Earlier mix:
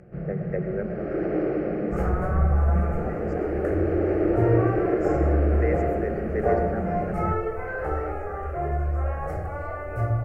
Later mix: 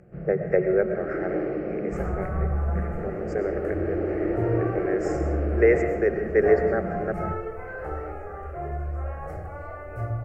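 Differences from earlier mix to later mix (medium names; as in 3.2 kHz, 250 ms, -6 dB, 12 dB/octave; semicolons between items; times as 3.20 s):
speech +9.0 dB; first sound -3.5 dB; second sound -5.0 dB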